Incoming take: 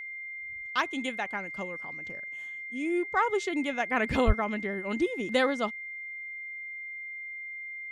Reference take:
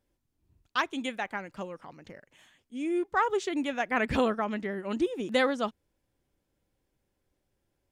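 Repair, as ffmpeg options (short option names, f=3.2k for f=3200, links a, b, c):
-filter_complex "[0:a]bandreject=f=2.1k:w=30,asplit=3[a][b][c];[a]afade=t=out:st=4.26:d=0.02[d];[b]highpass=f=140:w=0.5412,highpass=f=140:w=1.3066,afade=t=in:st=4.26:d=0.02,afade=t=out:st=4.38:d=0.02[e];[c]afade=t=in:st=4.38:d=0.02[f];[d][e][f]amix=inputs=3:normalize=0"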